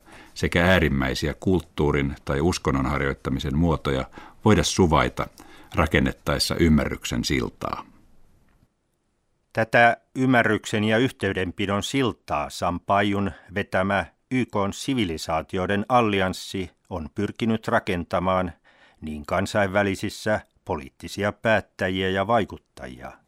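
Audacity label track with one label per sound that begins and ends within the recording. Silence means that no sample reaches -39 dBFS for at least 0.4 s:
9.550000	18.520000	sound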